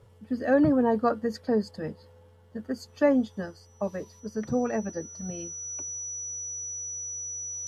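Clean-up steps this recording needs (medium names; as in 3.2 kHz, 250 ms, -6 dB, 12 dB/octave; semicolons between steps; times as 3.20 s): band-stop 5.9 kHz, Q 30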